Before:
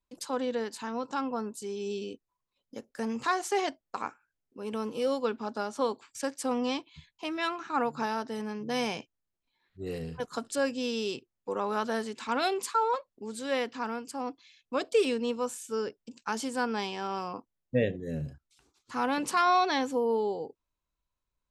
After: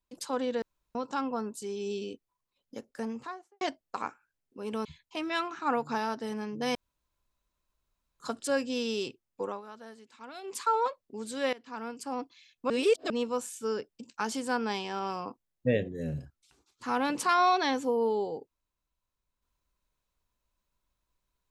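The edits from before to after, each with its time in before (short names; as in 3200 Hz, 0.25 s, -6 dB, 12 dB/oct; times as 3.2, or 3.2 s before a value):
0.62–0.95 room tone
2.79–3.61 studio fade out
4.85–6.93 cut
8.83–10.28 room tone
11.49–12.71 dip -16.5 dB, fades 0.21 s
13.61–14.11 fade in, from -20.5 dB
14.78–15.18 reverse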